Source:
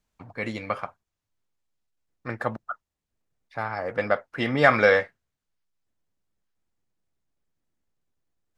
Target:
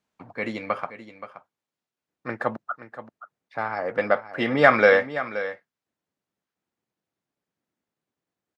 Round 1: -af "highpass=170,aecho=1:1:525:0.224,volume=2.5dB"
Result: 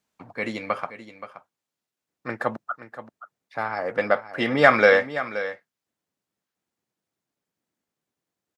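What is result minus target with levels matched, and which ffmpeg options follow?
8,000 Hz band +5.5 dB
-af "highpass=170,highshelf=frequency=5500:gain=-9.5,aecho=1:1:525:0.224,volume=2.5dB"

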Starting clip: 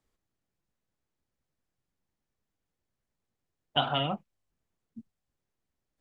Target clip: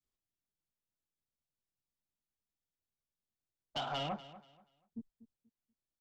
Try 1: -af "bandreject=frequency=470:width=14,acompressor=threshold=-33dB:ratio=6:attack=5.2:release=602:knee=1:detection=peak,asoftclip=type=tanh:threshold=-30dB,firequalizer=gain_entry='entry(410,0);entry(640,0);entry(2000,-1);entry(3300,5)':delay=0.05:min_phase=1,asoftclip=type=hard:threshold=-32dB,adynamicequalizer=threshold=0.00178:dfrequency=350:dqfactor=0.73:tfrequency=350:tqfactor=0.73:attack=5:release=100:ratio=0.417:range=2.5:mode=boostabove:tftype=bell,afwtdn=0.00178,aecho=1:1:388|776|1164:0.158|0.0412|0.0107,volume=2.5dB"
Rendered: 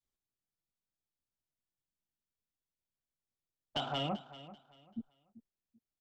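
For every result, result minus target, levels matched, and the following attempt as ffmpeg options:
echo 147 ms late; soft clipping: distortion −7 dB; 250 Hz band +3.0 dB
-af "bandreject=frequency=470:width=14,acompressor=threshold=-33dB:ratio=6:attack=5.2:release=602:knee=1:detection=peak,asoftclip=type=tanh:threshold=-30dB,firequalizer=gain_entry='entry(410,0);entry(640,0);entry(2000,-1);entry(3300,5)':delay=0.05:min_phase=1,asoftclip=type=hard:threshold=-32dB,adynamicequalizer=threshold=0.00178:dfrequency=350:dqfactor=0.73:tfrequency=350:tqfactor=0.73:attack=5:release=100:ratio=0.417:range=2.5:mode=boostabove:tftype=bell,afwtdn=0.00178,aecho=1:1:241|482|723:0.158|0.0412|0.0107,volume=2.5dB"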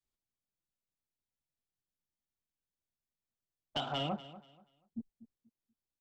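soft clipping: distortion −7 dB; 250 Hz band +2.5 dB
-af "bandreject=frequency=470:width=14,acompressor=threshold=-33dB:ratio=6:attack=5.2:release=602:knee=1:detection=peak,asoftclip=type=tanh:threshold=-38.5dB,firequalizer=gain_entry='entry(410,0);entry(640,0);entry(2000,-1);entry(3300,5)':delay=0.05:min_phase=1,asoftclip=type=hard:threshold=-32dB,adynamicequalizer=threshold=0.00178:dfrequency=350:dqfactor=0.73:tfrequency=350:tqfactor=0.73:attack=5:release=100:ratio=0.417:range=2.5:mode=boostabove:tftype=bell,afwtdn=0.00178,aecho=1:1:241|482|723:0.158|0.0412|0.0107,volume=2.5dB"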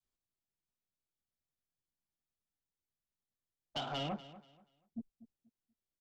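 250 Hz band +3.0 dB
-af "bandreject=frequency=470:width=14,acompressor=threshold=-33dB:ratio=6:attack=5.2:release=602:knee=1:detection=peak,asoftclip=type=tanh:threshold=-38.5dB,firequalizer=gain_entry='entry(410,0);entry(640,0);entry(2000,-1);entry(3300,5)':delay=0.05:min_phase=1,asoftclip=type=hard:threshold=-32dB,adynamicequalizer=threshold=0.00178:dfrequency=860:dqfactor=0.73:tfrequency=860:tqfactor=0.73:attack=5:release=100:ratio=0.417:range=2.5:mode=boostabove:tftype=bell,afwtdn=0.00178,aecho=1:1:241|482|723:0.158|0.0412|0.0107,volume=2.5dB"

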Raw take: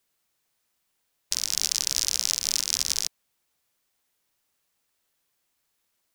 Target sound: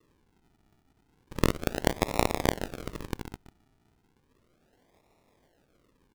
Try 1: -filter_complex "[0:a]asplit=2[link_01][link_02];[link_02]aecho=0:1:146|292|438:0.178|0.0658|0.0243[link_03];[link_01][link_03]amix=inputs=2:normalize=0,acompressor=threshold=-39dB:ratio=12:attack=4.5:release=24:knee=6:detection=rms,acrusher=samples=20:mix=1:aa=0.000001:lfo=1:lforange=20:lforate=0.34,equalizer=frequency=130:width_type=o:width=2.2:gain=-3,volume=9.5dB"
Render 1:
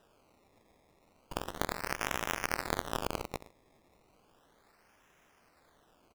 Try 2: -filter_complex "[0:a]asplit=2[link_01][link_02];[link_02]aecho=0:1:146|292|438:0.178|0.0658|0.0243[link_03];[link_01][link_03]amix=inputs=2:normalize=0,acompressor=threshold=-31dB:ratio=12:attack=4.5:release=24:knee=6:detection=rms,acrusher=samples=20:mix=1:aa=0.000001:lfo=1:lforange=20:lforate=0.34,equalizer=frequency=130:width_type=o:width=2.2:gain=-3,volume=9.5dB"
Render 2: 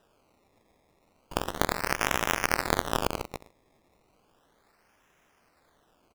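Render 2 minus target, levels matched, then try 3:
sample-and-hold swept by an LFO: distortion −9 dB
-filter_complex "[0:a]asplit=2[link_01][link_02];[link_02]aecho=0:1:146|292|438:0.178|0.0658|0.0243[link_03];[link_01][link_03]amix=inputs=2:normalize=0,acompressor=threshold=-31dB:ratio=12:attack=4.5:release=24:knee=6:detection=rms,acrusher=samples=56:mix=1:aa=0.000001:lfo=1:lforange=56:lforate=0.34,equalizer=frequency=130:width_type=o:width=2.2:gain=-3,volume=9.5dB"

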